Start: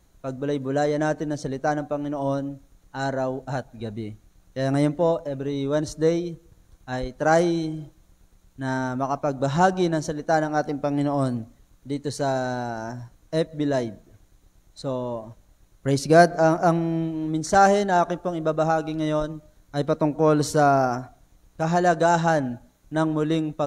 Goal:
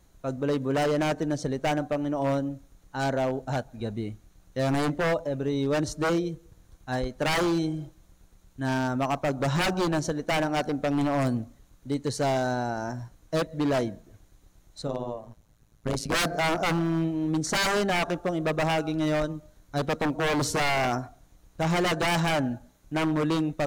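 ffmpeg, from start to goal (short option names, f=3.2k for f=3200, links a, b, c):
-filter_complex "[0:a]asplit=3[a][b][c];[a]afade=t=out:st=14.86:d=0.02[d];[b]tremolo=f=110:d=0.947,afade=t=in:st=14.86:d=0.02,afade=t=out:st=16.13:d=0.02[e];[c]afade=t=in:st=16.13:d=0.02[f];[d][e][f]amix=inputs=3:normalize=0,aeval=exprs='0.106*(abs(mod(val(0)/0.106+3,4)-2)-1)':c=same"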